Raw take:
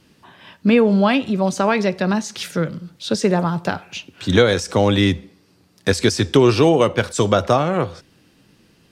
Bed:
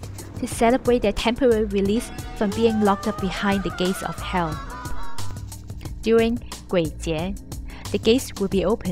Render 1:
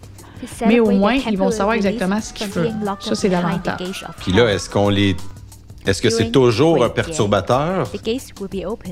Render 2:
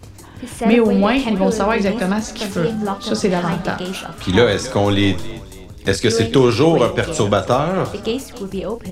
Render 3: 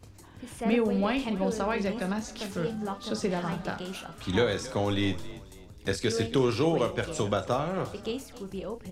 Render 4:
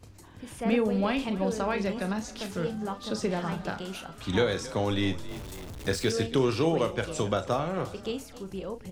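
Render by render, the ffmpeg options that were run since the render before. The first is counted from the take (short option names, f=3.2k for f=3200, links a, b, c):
-filter_complex "[1:a]volume=-4dB[a];[0:a][a]amix=inputs=2:normalize=0"
-filter_complex "[0:a]asplit=2[a][b];[b]adelay=37,volume=-10dB[c];[a][c]amix=inputs=2:normalize=0,asplit=4[d][e][f][g];[e]adelay=272,afreqshift=39,volume=-17.5dB[h];[f]adelay=544,afreqshift=78,volume=-25.5dB[i];[g]adelay=816,afreqshift=117,volume=-33.4dB[j];[d][h][i][j]amix=inputs=4:normalize=0"
-af "volume=-12dB"
-filter_complex "[0:a]asettb=1/sr,asplit=3[a][b][c];[a]atrim=end=5.284[d];[b]atrim=start=5.28:end=6.11,asetpts=PTS-STARTPTS,afade=t=in:d=0.004:c=qsin,afade=t=out:st=0.826:d=0.004:c=qsin,aeval=exprs='val(0)+0.5*0.0126*sgn(val(0))':c=same[e];[c]atrim=start=6.106[f];[d][e]acrossfade=d=0.004:c1=hsin:c2=qsin[g];[g][f]acrossfade=d=0.004:c1=qsin:c2=hsin"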